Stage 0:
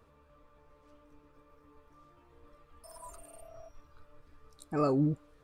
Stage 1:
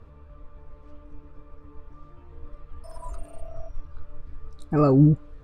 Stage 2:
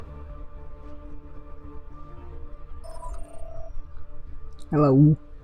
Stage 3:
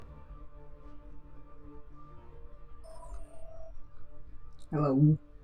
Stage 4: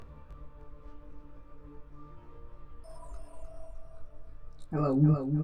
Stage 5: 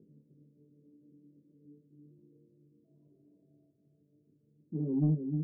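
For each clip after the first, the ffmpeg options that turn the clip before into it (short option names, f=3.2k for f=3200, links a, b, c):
-af "aemphasis=mode=reproduction:type=bsi,volume=6.5dB"
-af "acompressor=mode=upward:threshold=-29dB:ratio=2.5"
-af "flanger=delay=19:depth=2.6:speed=0.42,volume=-6dB"
-af "aecho=1:1:306|612|918|1224|1530:0.473|0.185|0.072|0.0281|0.0109"
-af "asuperpass=centerf=240:order=8:qfactor=0.93,asoftclip=type=tanh:threshold=-17dB,volume=-2dB"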